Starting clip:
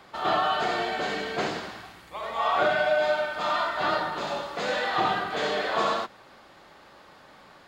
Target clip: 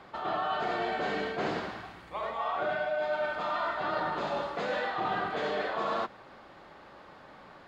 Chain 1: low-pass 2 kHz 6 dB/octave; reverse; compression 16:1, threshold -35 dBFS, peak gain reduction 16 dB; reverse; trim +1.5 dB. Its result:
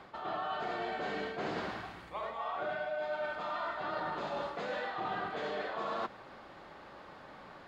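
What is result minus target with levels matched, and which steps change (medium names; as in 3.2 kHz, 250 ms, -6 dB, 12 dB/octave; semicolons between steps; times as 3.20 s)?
compression: peak gain reduction +5.5 dB
change: compression 16:1, threshold -29 dBFS, peak gain reduction 10 dB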